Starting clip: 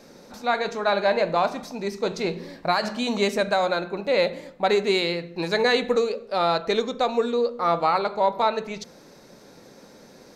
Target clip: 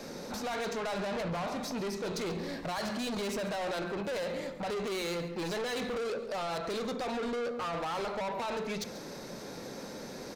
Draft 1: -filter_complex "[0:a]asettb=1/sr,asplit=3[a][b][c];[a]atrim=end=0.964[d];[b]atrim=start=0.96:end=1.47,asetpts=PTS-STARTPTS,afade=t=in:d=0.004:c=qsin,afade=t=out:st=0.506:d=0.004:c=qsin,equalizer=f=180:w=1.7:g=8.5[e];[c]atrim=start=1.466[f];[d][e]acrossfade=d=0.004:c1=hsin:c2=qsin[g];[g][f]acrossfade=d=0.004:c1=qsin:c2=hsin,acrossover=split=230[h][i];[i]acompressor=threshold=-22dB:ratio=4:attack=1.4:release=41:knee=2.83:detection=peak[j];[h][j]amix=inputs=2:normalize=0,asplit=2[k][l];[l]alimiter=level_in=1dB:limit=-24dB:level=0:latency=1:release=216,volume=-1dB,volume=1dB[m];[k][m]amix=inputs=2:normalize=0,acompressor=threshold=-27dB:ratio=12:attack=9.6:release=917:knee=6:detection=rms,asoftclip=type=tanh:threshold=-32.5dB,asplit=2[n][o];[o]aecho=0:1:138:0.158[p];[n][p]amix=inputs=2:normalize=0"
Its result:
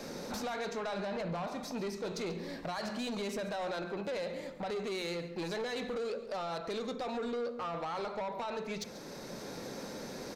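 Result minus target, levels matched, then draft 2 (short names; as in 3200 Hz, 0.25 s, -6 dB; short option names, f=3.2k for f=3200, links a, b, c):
compressor: peak gain reduction +8 dB
-filter_complex "[0:a]asettb=1/sr,asplit=3[a][b][c];[a]atrim=end=0.964[d];[b]atrim=start=0.96:end=1.47,asetpts=PTS-STARTPTS,afade=t=in:d=0.004:c=qsin,afade=t=out:st=0.506:d=0.004:c=qsin,equalizer=f=180:w=1.7:g=8.5[e];[c]atrim=start=1.466[f];[d][e]acrossfade=d=0.004:c1=hsin:c2=qsin[g];[g][f]acrossfade=d=0.004:c1=qsin:c2=hsin,acrossover=split=230[h][i];[i]acompressor=threshold=-22dB:ratio=4:attack=1.4:release=41:knee=2.83:detection=peak[j];[h][j]amix=inputs=2:normalize=0,asplit=2[k][l];[l]alimiter=level_in=1dB:limit=-24dB:level=0:latency=1:release=216,volume=-1dB,volume=1dB[m];[k][m]amix=inputs=2:normalize=0,acompressor=threshold=-17.5dB:ratio=12:attack=9.6:release=917:knee=6:detection=rms,asoftclip=type=tanh:threshold=-32.5dB,asplit=2[n][o];[o]aecho=0:1:138:0.158[p];[n][p]amix=inputs=2:normalize=0"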